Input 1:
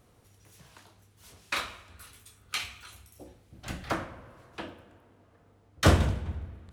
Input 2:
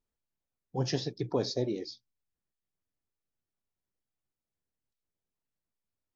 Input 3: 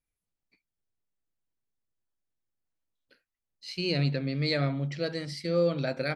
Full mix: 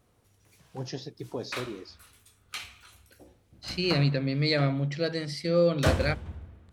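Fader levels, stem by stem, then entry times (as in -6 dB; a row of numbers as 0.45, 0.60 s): -5.0, -5.5, +2.5 dB; 0.00, 0.00, 0.00 s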